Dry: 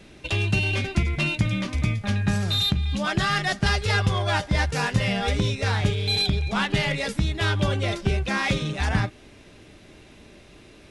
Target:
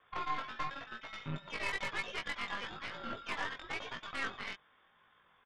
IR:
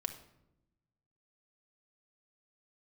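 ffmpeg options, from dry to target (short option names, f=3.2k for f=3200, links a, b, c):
-af "aderivative,lowpass=f=3.2k:t=q:w=0.5098,lowpass=f=3.2k:t=q:w=0.6013,lowpass=f=3.2k:t=q:w=0.9,lowpass=f=3.2k:t=q:w=2.563,afreqshift=-3800,atempo=2,aeval=exprs='0.0562*(cos(1*acos(clip(val(0)/0.0562,-1,1)))-cos(1*PI/2))+0.00355*(cos(5*acos(clip(val(0)/0.0562,-1,1)))-cos(5*PI/2))+0.00794*(cos(6*acos(clip(val(0)/0.0562,-1,1)))-cos(6*PI/2))+0.00355*(cos(7*acos(clip(val(0)/0.0562,-1,1)))-cos(7*PI/2))':c=same,flanger=delay=17.5:depth=3.4:speed=1,volume=3.5dB"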